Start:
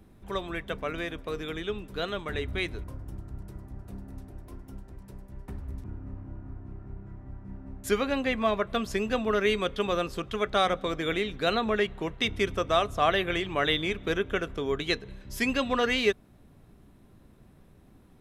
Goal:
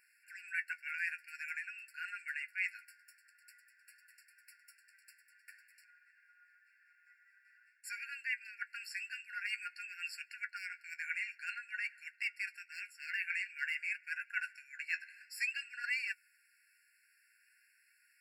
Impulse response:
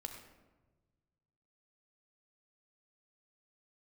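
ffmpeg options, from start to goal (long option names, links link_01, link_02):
-af "asoftclip=type=hard:threshold=-16.5dB,areverse,acompressor=threshold=-33dB:ratio=10,areverse,flanger=delay=6.6:depth=5.8:regen=44:speed=0.5:shape=triangular,afftfilt=real='re*eq(mod(floor(b*sr/1024/1400),2),1)':imag='im*eq(mod(floor(b*sr/1024/1400),2),1)':win_size=1024:overlap=0.75,volume=8.5dB"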